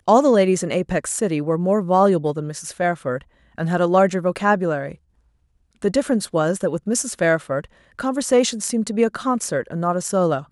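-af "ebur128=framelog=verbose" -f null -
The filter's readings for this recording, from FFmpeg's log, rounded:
Integrated loudness:
  I:         -20.4 LUFS
  Threshold: -30.8 LUFS
Loudness range:
  LRA:         2.6 LU
  Threshold: -41.3 LUFS
  LRA low:   -22.6 LUFS
  LRA high:  -20.0 LUFS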